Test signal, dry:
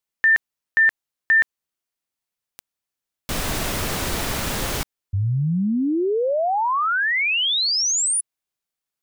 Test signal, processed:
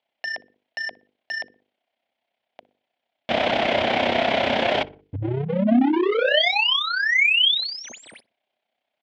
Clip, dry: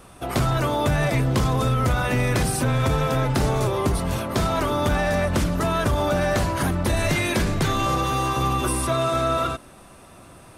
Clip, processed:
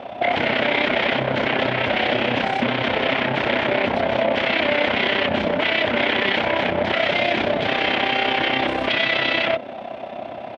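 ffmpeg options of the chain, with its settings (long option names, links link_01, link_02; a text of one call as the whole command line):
ffmpeg -i in.wav -filter_complex "[0:a]equalizer=frequency=710:width_type=o:width=0.7:gain=12.5,bandreject=frequency=50:width_type=h:width=6,bandreject=frequency=100:width_type=h:width=6,bandreject=frequency=150:width_type=h:width=6,bandreject=frequency=200:width_type=h:width=6,bandreject=frequency=250:width_type=h:width=6,bandreject=frequency=300:width_type=h:width=6,bandreject=frequency=350:width_type=h:width=6,bandreject=frequency=400:width_type=h:width=6,bandreject=frequency=450:width_type=h:width=6,bandreject=frequency=500:width_type=h:width=6,asplit=2[link_01][link_02];[link_02]acompressor=threshold=-28dB:ratio=10:attack=0.66:release=166:detection=rms,volume=0.5dB[link_03];[link_01][link_03]amix=inputs=2:normalize=0,aeval=exprs='0.119*(abs(mod(val(0)/0.119+3,4)-2)-1)':channel_layout=same,tremolo=f=32:d=0.621,highpass=140,equalizer=frequency=160:width_type=q:width=4:gain=-7,equalizer=frequency=240:width_type=q:width=4:gain=7,equalizer=frequency=600:width_type=q:width=4:gain=6,equalizer=frequency=1200:width_type=q:width=4:gain=-8,equalizer=frequency=2200:width_type=q:width=4:gain=5,equalizer=frequency=3200:width_type=q:width=4:gain=6,lowpass=frequency=3600:width=0.5412,lowpass=frequency=3600:width=1.3066,asplit=2[link_04][link_05];[link_05]adelay=60,lowpass=frequency=2100:poles=1,volume=-21dB,asplit=2[link_06][link_07];[link_07]adelay=60,lowpass=frequency=2100:poles=1,volume=0.42,asplit=2[link_08][link_09];[link_09]adelay=60,lowpass=frequency=2100:poles=1,volume=0.42[link_10];[link_04][link_06][link_08][link_10]amix=inputs=4:normalize=0,volume=4.5dB" out.wav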